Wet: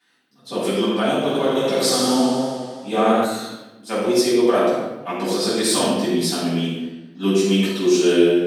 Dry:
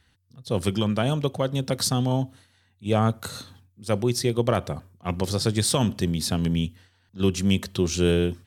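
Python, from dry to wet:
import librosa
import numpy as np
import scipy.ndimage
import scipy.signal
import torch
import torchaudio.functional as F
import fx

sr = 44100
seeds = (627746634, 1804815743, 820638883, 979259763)

y = scipy.signal.sosfilt(scipy.signal.butter(4, 250.0, 'highpass', fs=sr, output='sos'), x)
y = fx.room_shoebox(y, sr, seeds[0], volume_m3=590.0, walls='mixed', distance_m=8.3)
y = fx.echo_warbled(y, sr, ms=83, feedback_pct=73, rate_hz=2.8, cents=53, wet_db=-5, at=(1.19, 3.25))
y = y * 10.0 ** (-8.5 / 20.0)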